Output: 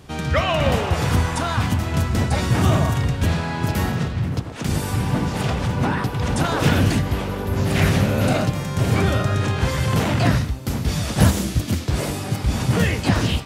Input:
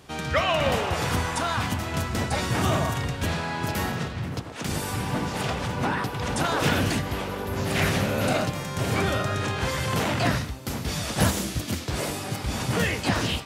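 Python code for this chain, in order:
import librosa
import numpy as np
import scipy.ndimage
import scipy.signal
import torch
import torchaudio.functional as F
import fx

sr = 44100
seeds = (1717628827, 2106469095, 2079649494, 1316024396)

y = fx.low_shelf(x, sr, hz=250.0, db=9.0)
y = F.gain(torch.from_numpy(y), 1.5).numpy()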